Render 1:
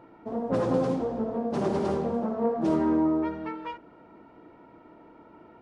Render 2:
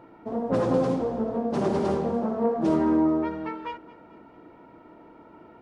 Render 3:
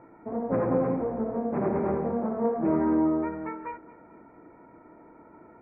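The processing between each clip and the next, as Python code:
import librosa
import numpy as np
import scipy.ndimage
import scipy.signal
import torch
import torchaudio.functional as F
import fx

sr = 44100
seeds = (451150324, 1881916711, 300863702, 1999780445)

y1 = fx.echo_feedback(x, sr, ms=220, feedback_pct=53, wet_db=-20.0)
y1 = y1 * 10.0 ** (2.0 / 20.0)
y2 = scipy.signal.sosfilt(scipy.signal.butter(16, 2400.0, 'lowpass', fs=sr, output='sos'), y1)
y2 = y2 * 10.0 ** (-2.0 / 20.0)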